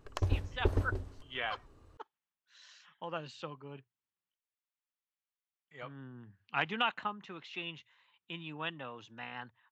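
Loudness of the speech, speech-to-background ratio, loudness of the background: -40.0 LUFS, -4.5 dB, -35.5 LUFS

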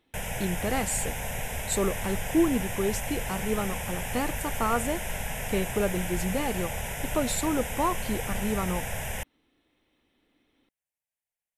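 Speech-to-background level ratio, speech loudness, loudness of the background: 3.0 dB, -30.5 LUFS, -33.5 LUFS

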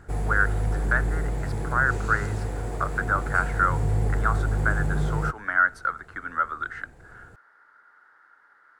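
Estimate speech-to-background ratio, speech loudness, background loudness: 2.0 dB, -26.5 LUFS, -28.5 LUFS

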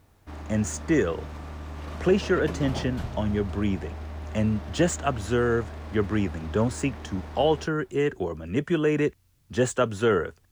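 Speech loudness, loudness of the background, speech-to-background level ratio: -26.5 LUFS, -38.0 LUFS, 11.5 dB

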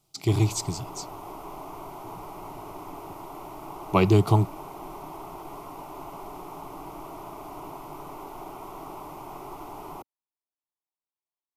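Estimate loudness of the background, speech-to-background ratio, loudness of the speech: -40.5 LUFS, 16.5 dB, -24.0 LUFS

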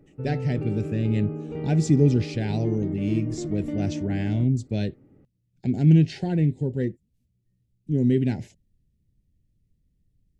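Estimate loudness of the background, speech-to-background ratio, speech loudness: -32.5 LUFS, 8.0 dB, -24.5 LUFS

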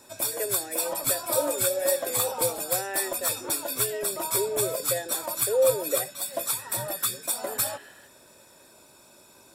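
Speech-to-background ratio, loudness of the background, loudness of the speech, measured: -4.0 dB, -27.0 LUFS, -31.0 LUFS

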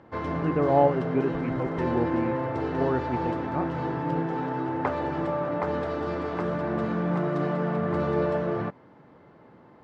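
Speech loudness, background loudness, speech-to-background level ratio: -29.0 LUFS, -29.0 LUFS, 0.0 dB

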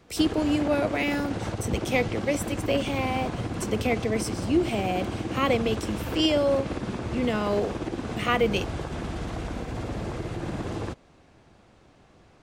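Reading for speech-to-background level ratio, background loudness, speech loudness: 5.0 dB, -32.5 LUFS, -27.5 LUFS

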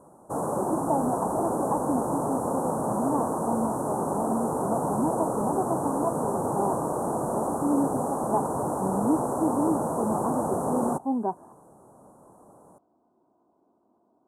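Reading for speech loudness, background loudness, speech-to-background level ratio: -31.0 LUFS, -28.5 LUFS, -2.5 dB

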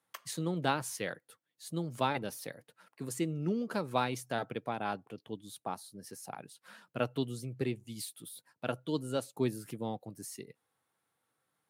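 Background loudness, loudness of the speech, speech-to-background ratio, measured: -51.5 LUFS, -37.0 LUFS, 14.5 dB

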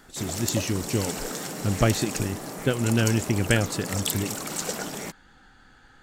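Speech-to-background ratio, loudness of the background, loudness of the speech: 4.5 dB, -31.5 LUFS, -27.0 LUFS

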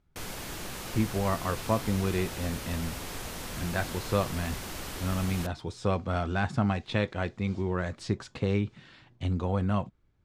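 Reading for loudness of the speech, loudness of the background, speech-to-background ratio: -31.5 LUFS, -38.0 LUFS, 6.5 dB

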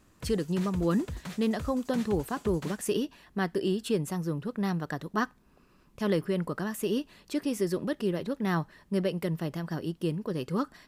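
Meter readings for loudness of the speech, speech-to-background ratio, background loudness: -31.0 LUFS, 11.5 dB, -42.5 LUFS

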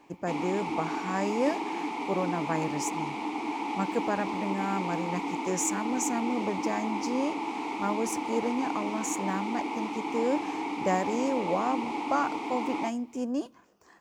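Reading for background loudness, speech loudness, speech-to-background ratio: -33.5 LUFS, -32.0 LUFS, 1.5 dB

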